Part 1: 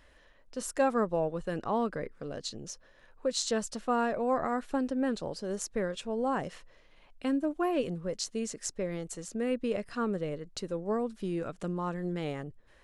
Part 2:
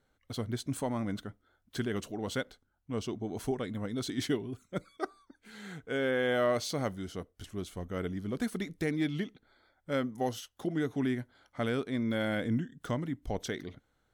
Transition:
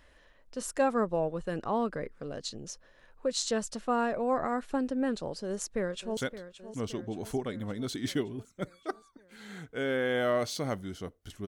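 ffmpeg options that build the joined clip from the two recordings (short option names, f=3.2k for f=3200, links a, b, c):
-filter_complex "[0:a]apad=whole_dur=11.47,atrim=end=11.47,atrim=end=6.172[a];[1:a]atrim=start=2.308:end=7.61[b];[a][b]acrossfade=d=0.004:c1=hsin:c2=hsin,asplit=2[c][d];[d]afade=t=in:st=5.45:d=0.01,afade=t=out:st=6.17:d=0.01,aecho=0:1:570|1140|1710|2280|2850|3420|3990|4560:0.237137|0.154139|0.100191|0.0651239|0.0423305|0.0275148|0.0178846|0.011625[e];[c][e]amix=inputs=2:normalize=0"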